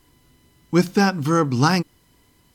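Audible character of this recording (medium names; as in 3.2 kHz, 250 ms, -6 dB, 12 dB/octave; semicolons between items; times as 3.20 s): noise floor -60 dBFS; spectral tilt -5.5 dB/octave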